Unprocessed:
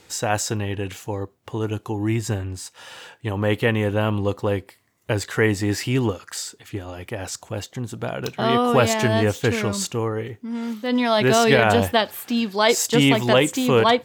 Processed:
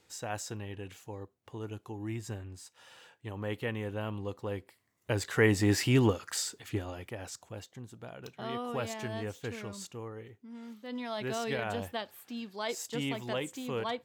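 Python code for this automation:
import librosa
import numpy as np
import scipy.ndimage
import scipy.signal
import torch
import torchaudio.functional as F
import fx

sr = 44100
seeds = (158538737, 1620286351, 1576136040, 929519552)

y = fx.gain(x, sr, db=fx.line((4.39, -15.0), (5.67, -3.5), (6.78, -3.5), (7.12, -11.0), (8.01, -18.0)))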